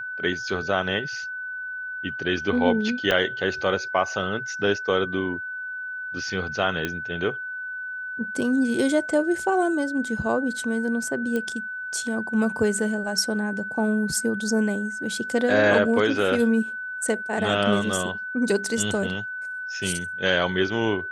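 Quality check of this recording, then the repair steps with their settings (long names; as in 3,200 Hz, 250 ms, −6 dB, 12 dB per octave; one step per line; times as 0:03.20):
whistle 1,500 Hz −30 dBFS
0:03.11: drop-out 3.3 ms
0:06.85: click −12 dBFS
0:11.36: click −15 dBFS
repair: click removal
notch filter 1,500 Hz, Q 30
repair the gap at 0:03.11, 3.3 ms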